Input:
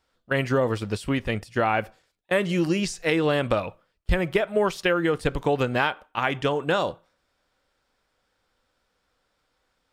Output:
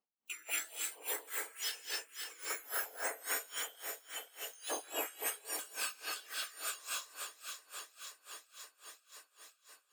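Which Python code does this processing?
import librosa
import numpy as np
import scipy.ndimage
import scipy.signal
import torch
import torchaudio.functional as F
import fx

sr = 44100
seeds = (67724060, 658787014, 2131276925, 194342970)

p1 = fx.octave_mirror(x, sr, pivot_hz=2000.0)
p2 = fx.noise_reduce_blind(p1, sr, reduce_db=6)
p3 = fx.level_steps(p2, sr, step_db=19)
p4 = fx.ladder_bandpass(p3, sr, hz=3100.0, resonance_pct=90, at=(3.47, 4.46))
p5 = fx.rev_gated(p4, sr, seeds[0], gate_ms=260, shape='rising', drr_db=-1.0)
p6 = fx.rider(p5, sr, range_db=3, speed_s=2.0)
p7 = p6 + fx.echo_alternate(p6, sr, ms=263, hz=2100.0, feedback_pct=83, wet_db=-6.0, dry=0)
y = p7 * 10.0 ** (-22 * (0.5 - 0.5 * np.cos(2.0 * np.pi * 3.6 * np.arange(len(p7)) / sr)) / 20.0)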